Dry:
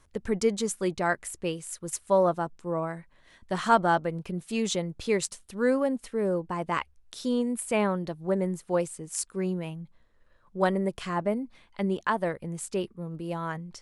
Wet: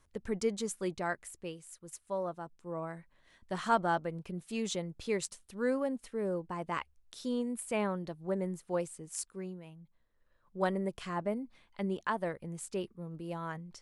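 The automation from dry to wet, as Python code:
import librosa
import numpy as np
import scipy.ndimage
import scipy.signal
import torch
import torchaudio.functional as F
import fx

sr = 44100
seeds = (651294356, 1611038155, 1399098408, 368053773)

y = fx.gain(x, sr, db=fx.line((0.9, -7.0), (1.81, -13.5), (2.38, -13.5), (2.95, -7.0), (9.2, -7.0), (9.61, -15.5), (10.62, -6.5)))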